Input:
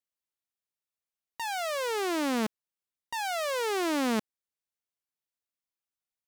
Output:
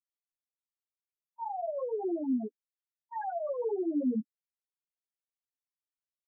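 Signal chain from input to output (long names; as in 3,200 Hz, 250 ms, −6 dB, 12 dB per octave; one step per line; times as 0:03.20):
multi-voice chorus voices 2, 0.43 Hz, delay 18 ms, depth 4.3 ms
spectral peaks only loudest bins 2
level +3.5 dB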